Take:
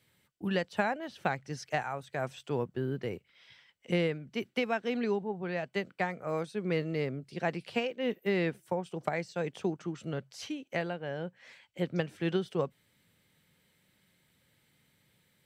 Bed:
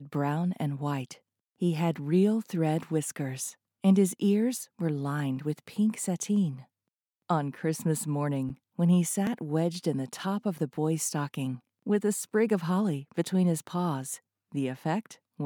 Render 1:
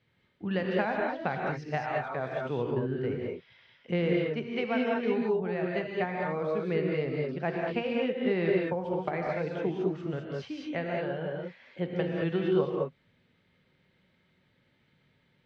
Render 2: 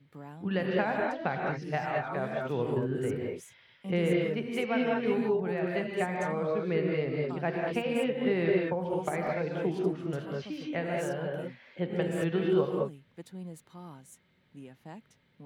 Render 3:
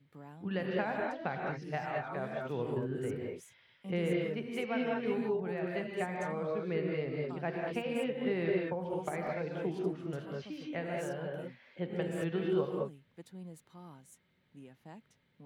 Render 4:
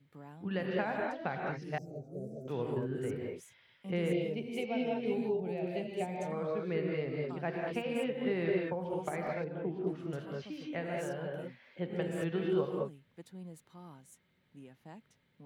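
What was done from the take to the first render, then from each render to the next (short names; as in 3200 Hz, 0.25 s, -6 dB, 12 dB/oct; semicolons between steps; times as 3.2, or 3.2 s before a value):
air absorption 240 m; non-linear reverb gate 0.24 s rising, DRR -1.5 dB
add bed -17 dB
gain -5 dB
1.78–2.48 elliptic band-stop 480–6100 Hz; 4.12–6.32 band shelf 1400 Hz -13.5 dB 1.1 oct; 9.44–9.87 tape spacing loss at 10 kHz 37 dB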